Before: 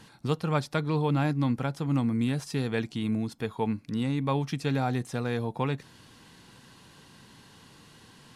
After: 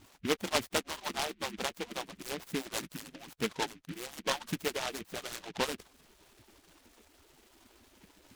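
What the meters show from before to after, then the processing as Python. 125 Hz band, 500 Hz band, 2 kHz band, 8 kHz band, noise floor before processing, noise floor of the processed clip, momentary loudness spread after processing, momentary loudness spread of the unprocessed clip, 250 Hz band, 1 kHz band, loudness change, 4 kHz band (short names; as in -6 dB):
-20.0 dB, -5.0 dB, -0.5 dB, +8.0 dB, -55 dBFS, -65 dBFS, 11 LU, 5 LU, -13.0 dB, -4.5 dB, -6.5 dB, +4.5 dB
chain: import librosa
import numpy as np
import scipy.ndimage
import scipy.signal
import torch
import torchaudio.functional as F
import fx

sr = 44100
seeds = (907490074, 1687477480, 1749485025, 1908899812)

y = fx.hpss_only(x, sr, part='percussive')
y = scipy.signal.sosfilt(scipy.signal.butter(2, 3800.0, 'lowpass', fs=sr, output='sos'), y)
y = fx.noise_mod_delay(y, sr, seeds[0], noise_hz=2200.0, depth_ms=0.17)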